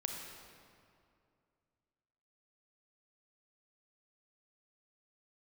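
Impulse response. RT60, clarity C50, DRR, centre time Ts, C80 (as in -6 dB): 2.4 s, 2.5 dB, 1.5 dB, 76 ms, 3.5 dB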